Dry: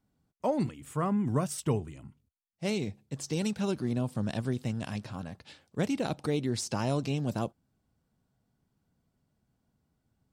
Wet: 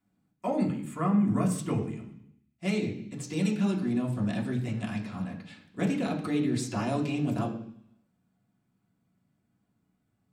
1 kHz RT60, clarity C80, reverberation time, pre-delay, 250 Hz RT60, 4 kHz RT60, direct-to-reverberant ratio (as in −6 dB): 0.65 s, 11.5 dB, 0.65 s, 3 ms, 0.80 s, 0.90 s, −3.0 dB